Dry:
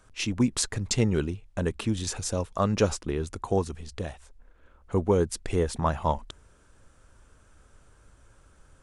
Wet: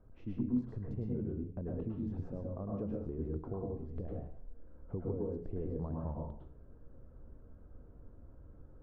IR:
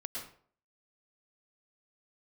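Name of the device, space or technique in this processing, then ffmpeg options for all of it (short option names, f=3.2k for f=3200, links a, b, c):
television next door: -filter_complex "[0:a]acompressor=threshold=-39dB:ratio=4,lowpass=480[a];[1:a]atrim=start_sample=2205[b];[a][b]afir=irnorm=-1:irlink=0,volume=4dB"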